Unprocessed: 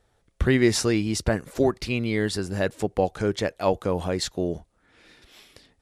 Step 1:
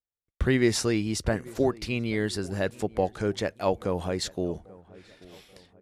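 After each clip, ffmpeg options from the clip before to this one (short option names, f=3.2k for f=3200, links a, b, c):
-filter_complex "[0:a]agate=range=-35dB:threshold=-58dB:ratio=16:detection=peak,asplit=2[a][b];[b]adelay=835,lowpass=f=1.5k:p=1,volume=-21dB,asplit=2[c][d];[d]adelay=835,lowpass=f=1.5k:p=1,volume=0.46,asplit=2[e][f];[f]adelay=835,lowpass=f=1.5k:p=1,volume=0.46[g];[a][c][e][g]amix=inputs=4:normalize=0,volume=-3dB"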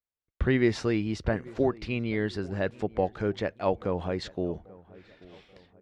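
-af "lowpass=3.2k,volume=-1dB"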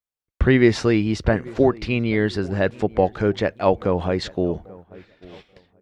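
-af "agate=range=-9dB:threshold=-51dB:ratio=16:detection=peak,volume=8.5dB"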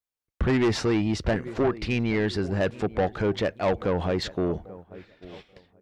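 -af "asoftclip=type=tanh:threshold=-17dB,volume=-1dB"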